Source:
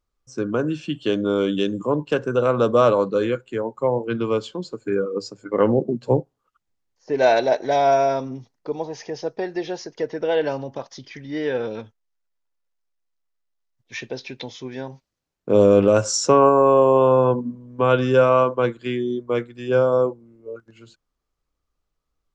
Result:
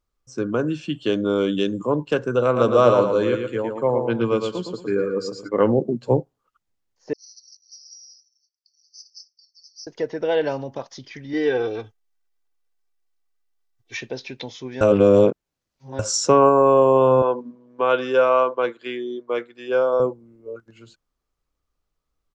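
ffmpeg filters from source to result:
-filter_complex "[0:a]asplit=3[a][b][c];[a]afade=t=out:st=2.55:d=0.02[d];[b]aecho=1:1:114|228|342|456:0.531|0.17|0.0544|0.0174,afade=t=in:st=2.55:d=0.02,afade=t=out:st=5.47:d=0.02[e];[c]afade=t=in:st=5.47:d=0.02[f];[d][e][f]amix=inputs=3:normalize=0,asettb=1/sr,asplit=3[g][h][i];[g]atrim=end=7.134[j];[h]atrim=start=7.13:end=9.87,asetpts=PTS-STARTPTS,afade=t=in:d=0.004:c=qsin,afade=t=out:st=2.736:d=0.004:c=qsin,asuperpass=centerf=5200:order=20:qfactor=2.9[k];[i]atrim=start=9.866[l];[j][k]acrossfade=d=0.004:c1=hsin:c2=qsin[m];[m][l]acrossfade=d=0.004:c1=qsin:c2=hsin,asettb=1/sr,asplit=3[n][o][p];[n]atrim=end=11.334[q];[o]atrim=start=11.33:end=13.97,asetpts=PTS-STARTPTS,afade=t=in:d=0.004:c=qsin,afade=t=out:st=2.636:d=0.004:c=qsin,aecho=1:1:2.6:0.89,atrim=end_sample=116424[r];[p]atrim=start=13.966[s];[q][r]acrossfade=d=0.004:c1=hsin:c2=qsin[t];[t][s]acrossfade=d=0.004:c1=qsin:c2=hsin,asettb=1/sr,asplit=3[u][v][w];[u]atrim=end=17.224[x];[v]atrim=start=17.22:end=20,asetpts=PTS-STARTPTS,afade=t=in:d=0.004:c=qsin,afade=t=out:st=2.776:d=0.004:c=qsin,highpass=400,lowpass=5.4k[y];[w]atrim=start=19.996[z];[x][y]acrossfade=d=0.004:c1=hsin:c2=qsin[aa];[aa][z]acrossfade=d=0.004:c1=qsin:c2=hsin,asplit=3[ab][ac][ad];[ab]atrim=end=14.812[ae];[ac]atrim=start=14.808:end=15.992,asetpts=PTS-STARTPTS,areverse[af];[ad]atrim=start=15.988[ag];[ae][af]acrossfade=d=0.004:c1=hsin:c2=hsin[ah];[ah][ag]acrossfade=d=0.004:c1=hsin:c2=hsin"

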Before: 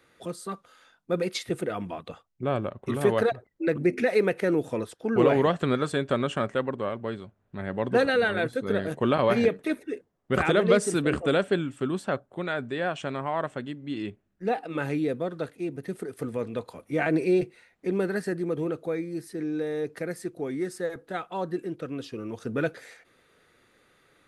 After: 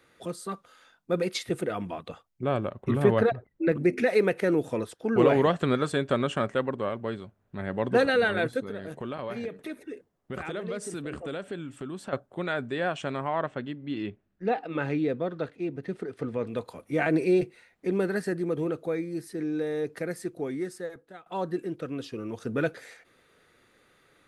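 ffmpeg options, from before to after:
-filter_complex "[0:a]asettb=1/sr,asplit=3[a][b][c];[a]atrim=end=2.844[d];[b]atrim=start=2.84:end=3.72,asetpts=PTS-STARTPTS,afade=t=in:d=0.004:c=qsin,afade=t=out:st=0.876:d=0.004:c=qsin,bass=f=250:g=6,treble=f=4k:g=-10[e];[c]atrim=start=3.716[f];[d][e]acrossfade=d=0.004:c1=hsin:c2=qsin[g];[g][f]acrossfade=d=0.004:c1=qsin:c2=hsin,asettb=1/sr,asplit=3[h][i][j];[h]atrim=end=8.604[k];[i]atrim=start=8.6:end=12.13,asetpts=PTS-STARTPTS,afade=t=in:d=0.004:c=qsin,afade=t=out:st=3.526:d=0.004:c=qsin,acompressor=threshold=-37dB:ratio=2.5:attack=3.2:release=140:knee=1:detection=peak[l];[j]atrim=start=12.126[m];[k][l]acrossfade=d=0.004:c1=hsin:c2=qsin[n];[n][m]acrossfade=d=0.004:c1=qsin:c2=hsin,asettb=1/sr,asplit=3[o][p][q];[o]atrim=end=13.274[r];[p]atrim=start=13.27:end=16.47,asetpts=PTS-STARTPTS,afade=t=in:d=0.004:c=qsin,afade=t=out:st=3.196:d=0.004:c=qsin,lowpass=4.4k[s];[q]atrim=start=16.466[t];[r][s]acrossfade=d=0.004:c1=hsin:c2=qsin[u];[u][t]acrossfade=d=0.004:c1=qsin:c2=hsin,asplit=2[v][w];[v]atrim=end=21.26,asetpts=PTS-STARTPTS,afade=t=out:st=20.41:d=0.85:silence=0.0944061[x];[w]atrim=start=21.26,asetpts=PTS-STARTPTS,afade=t=in:d=0.004:c=hsin:silence=0.0944061[y];[x][y]concat=n=2:v=0:a=1"

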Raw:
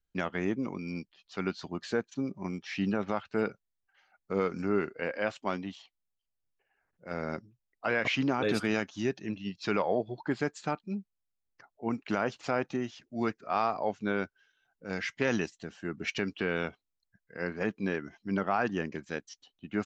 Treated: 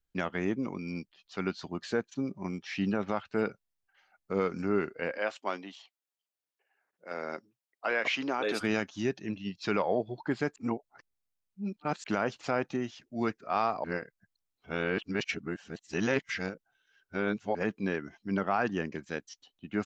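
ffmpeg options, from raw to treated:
-filter_complex "[0:a]asettb=1/sr,asplit=3[a][b][c];[a]atrim=end=5.184[d];[b]atrim=start=5.18:end=8.61,asetpts=PTS-STARTPTS,afade=t=in:d=0.004:c=qsin,afade=t=out:st=3.426:d=0.004:c=qsin,highpass=360[e];[c]atrim=start=8.606[f];[d][e]acrossfade=d=0.004:c1=hsin:c2=qsin[g];[g][f]acrossfade=d=0.004:c1=qsin:c2=hsin,asplit=5[h][i][j][k][l];[h]atrim=end=10.562[m];[i]atrim=start=10.558:end=12.042,asetpts=PTS-STARTPTS,areverse[n];[j]atrim=start=12.038:end=13.842[o];[k]atrim=start=13.838:end=17.552,asetpts=PTS-STARTPTS,areverse[p];[l]atrim=start=17.548[q];[m][n]acrossfade=d=0.004:c1=hsin:c2=hsin[r];[r][o]acrossfade=d=0.004:c1=hsin:c2=hsin[s];[s][p]acrossfade=d=0.004:c1=hsin:c2=hsin[t];[t][q]acrossfade=d=0.004:c1=hsin:c2=hsin"

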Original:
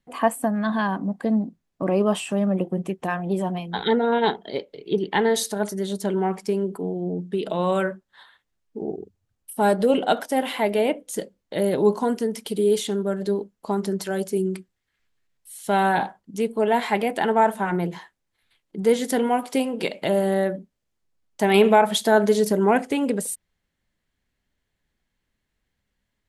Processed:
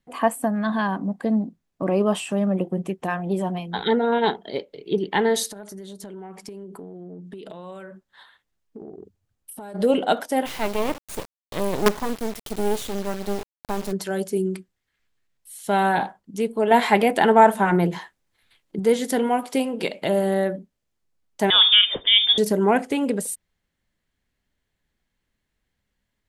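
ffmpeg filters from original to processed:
-filter_complex "[0:a]asplit=3[a][b][c];[a]afade=t=out:st=5.5:d=0.02[d];[b]acompressor=threshold=-34dB:ratio=16:attack=3.2:release=140:knee=1:detection=peak,afade=t=in:st=5.5:d=0.02,afade=t=out:st=9.74:d=0.02[e];[c]afade=t=in:st=9.74:d=0.02[f];[d][e][f]amix=inputs=3:normalize=0,asplit=3[g][h][i];[g]afade=t=out:st=10.45:d=0.02[j];[h]acrusher=bits=3:dc=4:mix=0:aa=0.000001,afade=t=in:st=10.45:d=0.02,afade=t=out:st=13.91:d=0.02[k];[i]afade=t=in:st=13.91:d=0.02[l];[j][k][l]amix=inputs=3:normalize=0,asettb=1/sr,asplit=3[m][n][o];[m]atrim=end=21.504[p];[n]atrim=start=21.5:end=22.38,asetpts=PTS-STARTPTS,afade=t=in:d=0.004:c=qsin,afade=t=out:st=0.876:d=0.004:c=qsin,lowpass=f=3.2k:t=q:w=0.5098,lowpass=f=3.2k:t=q:w=0.6013,lowpass=f=3.2k:t=q:w=0.9,lowpass=f=3.2k:t=q:w=2.563,afreqshift=-3800[q];[o]atrim=start=22.376[r];[p][q]acrossfade=d=0.004:c1=hsin:c2=qsin[s];[s][r]acrossfade=d=0.004:c1=qsin:c2=hsin,asplit=3[t][u][v];[t]atrim=end=16.712[w];[u]atrim=start=16.708:end=18.792,asetpts=PTS-STARTPTS,volume=5dB[x];[v]atrim=start=18.788[y];[w][x]acrossfade=d=0.004:c1=hsin:c2=hsin[z];[z][y]acrossfade=d=0.004:c1=hsin:c2=hsin"

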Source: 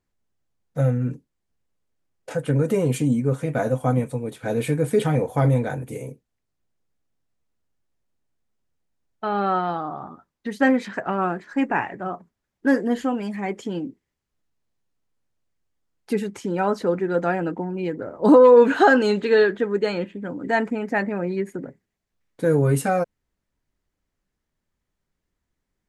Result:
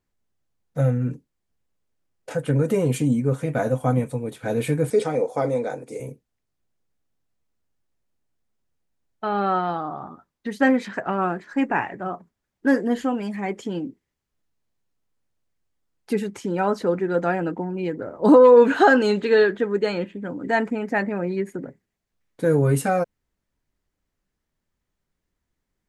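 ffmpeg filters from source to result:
-filter_complex "[0:a]asettb=1/sr,asplit=3[a][b][c];[a]atrim=end=4.904[d];[b]atrim=start=4.9:end=6,asetpts=PTS-STARTPTS,afade=t=in:d=0.004:c=qsin,afade=t=out:st=1.096:d=0.004:c=qsin,highpass=300,equalizer=f=490:t=q:w=4:g=4,equalizer=f=970:t=q:w=4:g=-3,equalizer=f=1.7k:t=q:w=4:g=-7,equalizer=f=3k:t=q:w=4:g=-9,equalizer=f=5.2k:t=q:w=4:g=7,lowpass=f=9.2k:w=0.5412,lowpass=f=9.2k:w=1.3066[e];[c]atrim=start=5.996[f];[d][e]acrossfade=d=0.004:c1=hsin:c2=qsin[g];[g][f]acrossfade=d=0.004:c1=qsin:c2=hsin"

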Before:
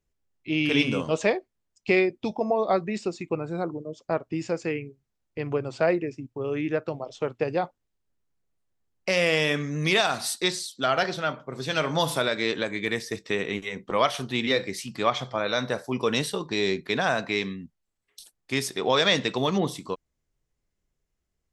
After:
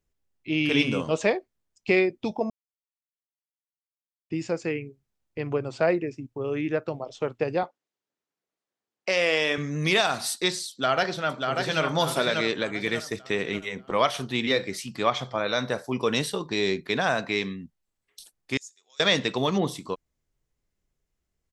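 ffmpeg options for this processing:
-filter_complex "[0:a]asettb=1/sr,asplit=3[a][b][c];[a]atrim=end=7.634[d];[b]atrim=start=7.63:end=9.58,asetpts=PTS-STARTPTS,afade=t=in:d=0.004:c=qsin,afade=t=out:st=1.946:d=0.004:c=qsin,highpass=300,lowpass=7.1k[e];[c]atrim=start=9.576[f];[d][e]acrossfade=d=0.004:c1=hsin:c2=qsin[g];[g][f]acrossfade=d=0.004:c1=qsin:c2=hsin,asplit=2[h][i];[i]afade=t=in:st=10.7:d=0.01,afade=t=out:st=11.82:d=0.01,aecho=0:1:590|1180|1770|2360|2950:0.630957|0.252383|0.100953|0.0403813|0.0161525[j];[h][j]amix=inputs=2:normalize=0,asettb=1/sr,asplit=3[k][l][m];[k]atrim=end=18.574[n];[l]atrim=start=18.57:end=19,asetpts=PTS-STARTPTS,afade=t=in:d=0.004:c=qsin,afade=t=out:st=0.426:d=0.004:c=qsin,bandpass=f=6.9k:t=q:w=15[o];[m]atrim=start=18.996[p];[n][o]acrossfade=d=0.004:c1=hsin:c2=qsin[q];[q][p]acrossfade=d=0.004:c1=qsin:c2=hsin,asplit=3[r][s][t];[r]atrim=end=2.5,asetpts=PTS-STARTPTS,afade=t=out:st=2.496:d=0.004:c=hsin[u];[s]atrim=start=2.5:end=4.3,asetpts=PTS-STARTPTS,volume=0[v];[t]atrim=start=4.3,asetpts=PTS-STARTPTS,afade=t=in:d=0.004:c=hsin[w];[u][v][w]concat=n=3:v=0:a=1"

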